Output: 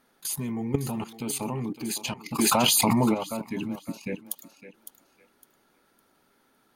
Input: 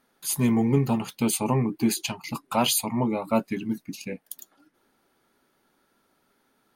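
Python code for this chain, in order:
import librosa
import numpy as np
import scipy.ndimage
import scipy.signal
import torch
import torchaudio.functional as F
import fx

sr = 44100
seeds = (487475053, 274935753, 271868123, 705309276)

p1 = fx.level_steps(x, sr, step_db=18)
p2 = p1 + fx.echo_thinned(p1, sr, ms=558, feedback_pct=25, hz=420.0, wet_db=-11, dry=0)
p3 = fx.env_flatten(p2, sr, amount_pct=100, at=(2.38, 3.13), fade=0.02)
y = F.gain(torch.from_numpy(p3), 5.5).numpy()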